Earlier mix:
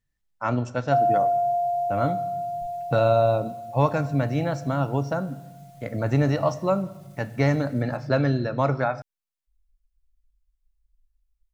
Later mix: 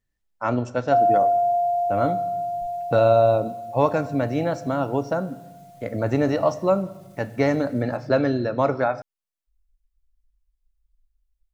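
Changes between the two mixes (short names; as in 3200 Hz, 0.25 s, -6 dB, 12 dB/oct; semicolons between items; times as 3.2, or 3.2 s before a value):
speech: add bell 140 Hz -9 dB 0.21 oct; master: add bell 440 Hz +4.5 dB 1.6 oct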